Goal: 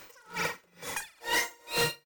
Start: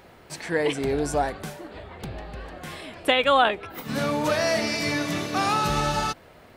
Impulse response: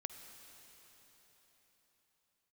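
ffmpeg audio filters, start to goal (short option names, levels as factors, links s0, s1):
-filter_complex "[0:a]bandreject=f=4400:w=9.8,aecho=1:1:6.7:0.36,aeval=exprs='val(0)+0.00282*sin(2*PI*5000*n/s)':c=same,acrossover=split=210|7700[s0][s1][s2];[s1]asoftclip=type=tanh:threshold=0.0708[s3];[s0][s3][s2]amix=inputs=3:normalize=0,asetrate=141120,aresample=44100,aecho=1:1:40|84|132.4|185.6|244.2:0.631|0.398|0.251|0.158|0.1,aeval=exprs='0.106*(abs(mod(val(0)/0.106+3,4)-2)-1)':c=same,aeval=exprs='val(0)*pow(10,-33*(0.5-0.5*cos(2*PI*2.2*n/s))/20)':c=same"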